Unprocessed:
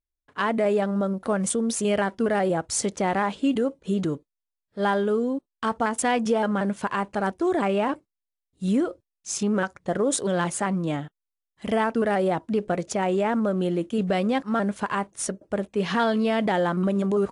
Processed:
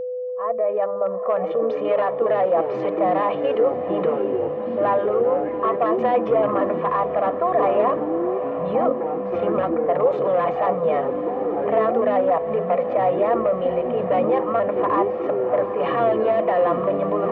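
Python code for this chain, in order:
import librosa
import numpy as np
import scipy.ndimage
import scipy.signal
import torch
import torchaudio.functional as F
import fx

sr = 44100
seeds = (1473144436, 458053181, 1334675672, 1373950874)

p1 = fx.fade_in_head(x, sr, length_s=2.03)
p2 = fx.hum_notches(p1, sr, base_hz=50, count=8)
p3 = fx.env_lowpass(p2, sr, base_hz=620.0, full_db=-19.5)
p4 = fx.low_shelf(p3, sr, hz=470.0, db=-10.0)
p5 = p4 + 0.98 * np.pad(p4, (int(1.7 * sr / 1000.0), 0))[:len(p4)]
p6 = fx.over_compress(p5, sr, threshold_db=-33.0, ratio=-1.0)
p7 = p5 + (p6 * librosa.db_to_amplitude(0.5))
p8 = 10.0 ** (-17.5 / 20.0) * (np.abs((p7 / 10.0 ** (-17.5 / 20.0) + 3.0) % 4.0 - 2.0) - 1.0)
p9 = fx.cabinet(p8, sr, low_hz=270.0, low_slope=12, high_hz=2100.0, hz=(340.0, 490.0, 710.0, 1000.0, 1600.0), db=(-10, 7, 6, 7, -10))
p10 = fx.echo_pitch(p9, sr, ms=784, semitones=-6, count=3, db_per_echo=-6.0)
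p11 = p10 + fx.echo_diffused(p10, sr, ms=785, feedback_pct=59, wet_db=-11.5, dry=0)
y = p11 + 10.0 ** (-25.0 / 20.0) * np.sin(2.0 * np.pi * 500.0 * np.arange(len(p11)) / sr)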